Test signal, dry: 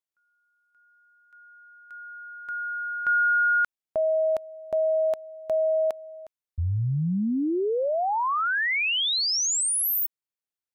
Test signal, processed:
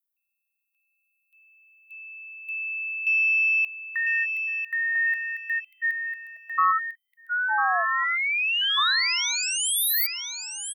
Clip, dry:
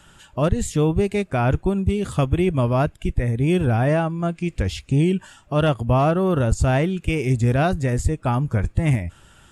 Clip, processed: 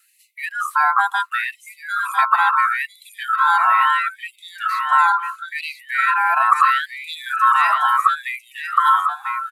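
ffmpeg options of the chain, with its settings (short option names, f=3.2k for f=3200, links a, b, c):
-filter_complex "[0:a]equalizer=f=520:w=1:g=-4.5,aexciter=amount=9:drive=6.1:freq=9.6k,acrossover=split=2900[a][b];[b]acompressor=threshold=-33dB:ratio=4:attack=1:release=60[c];[a][c]amix=inputs=2:normalize=0,afftdn=nr=14:nf=-32,asplit=2[d][e];[e]asoftclip=type=tanh:threshold=-17.5dB,volume=-10dB[f];[d][f]amix=inputs=2:normalize=0,acontrast=23,lowshelf=f=93:g=3,aeval=exprs='val(0)*sin(2*PI*1200*n/s)':c=same,asplit=2[g][h];[h]aecho=0:1:999|1998|2997:0.447|0.112|0.0279[i];[g][i]amix=inputs=2:normalize=0,afftfilt=real='re*gte(b*sr/1024,640*pow(2000/640,0.5+0.5*sin(2*PI*0.74*pts/sr)))':imag='im*gte(b*sr/1024,640*pow(2000/640,0.5+0.5*sin(2*PI*0.74*pts/sr)))':win_size=1024:overlap=0.75"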